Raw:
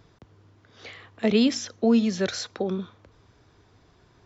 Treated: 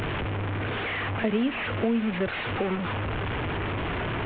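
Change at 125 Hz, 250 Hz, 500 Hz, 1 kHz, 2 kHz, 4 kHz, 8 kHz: +8.5 dB, -3.5 dB, -1.5 dB, +9.0 dB, +9.0 dB, -2.0 dB, n/a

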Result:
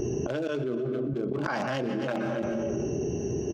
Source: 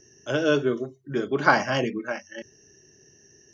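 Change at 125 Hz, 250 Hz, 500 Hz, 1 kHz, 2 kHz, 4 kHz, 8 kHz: +2.0 dB, 0.0 dB, -2.5 dB, -8.5 dB, -10.5 dB, -8.5 dB, n/a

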